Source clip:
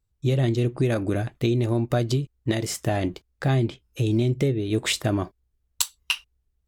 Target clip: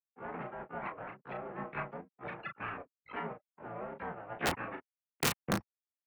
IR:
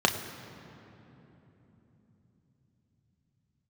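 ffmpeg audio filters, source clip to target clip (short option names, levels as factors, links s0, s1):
-filter_complex "[0:a]afftfilt=real='re*gte(hypot(re,im),0.126)':imag='im*gte(hypot(re,im),0.126)':win_size=1024:overlap=0.75,aderivative,aresample=16000,aeval=exprs='abs(val(0))':c=same,aresample=44100,asplit=4[s0][s1][s2][s3];[s1]asetrate=52444,aresample=44100,atempo=0.840896,volume=0.126[s4];[s2]asetrate=55563,aresample=44100,atempo=0.793701,volume=0.891[s5];[s3]asetrate=88200,aresample=44100,atempo=0.5,volume=0.708[s6];[s0][s4][s5][s6]amix=inputs=4:normalize=0,highpass=f=240:t=q:w=0.5412,highpass=f=240:t=q:w=1.307,lowpass=f=2500:t=q:w=0.5176,lowpass=f=2500:t=q:w=0.7071,lowpass=f=2500:t=q:w=1.932,afreqshift=-96,aeval=exprs='(mod(42.2*val(0)+1,2)-1)/42.2':c=same,asplit=2[s7][s8];[s8]aecho=0:1:24|35:0.141|0.501[s9];[s7][s9]amix=inputs=2:normalize=0,atempo=1.1,volume=3.35"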